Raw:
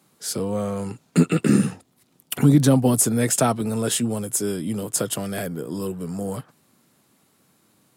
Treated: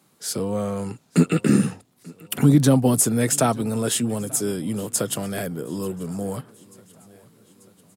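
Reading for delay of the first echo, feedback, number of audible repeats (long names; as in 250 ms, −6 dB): 888 ms, 60%, 3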